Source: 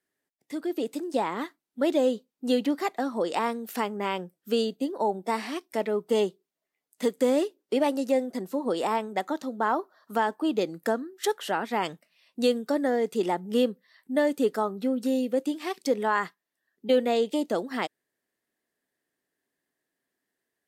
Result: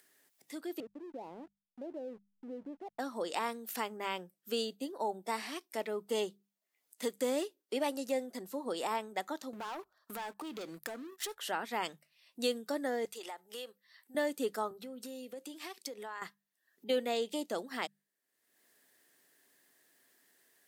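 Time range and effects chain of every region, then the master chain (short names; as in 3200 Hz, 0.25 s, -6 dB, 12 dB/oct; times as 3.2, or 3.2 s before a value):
0.8–2.99 steep low-pass 830 Hz + backlash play -39.5 dBFS + compressor 2.5:1, threshold -34 dBFS
9.53–11.38 sample leveller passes 3 + compressor, threshold -32 dBFS
13.05–14.15 HPF 640 Hz + compressor 5:1, threshold -32 dBFS
14.71–16.22 HPF 240 Hz + compressor 5:1, threshold -32 dBFS
whole clip: tilt +2 dB/oct; notches 50/100/150/200 Hz; upward compressor, threshold -45 dBFS; gain -7.5 dB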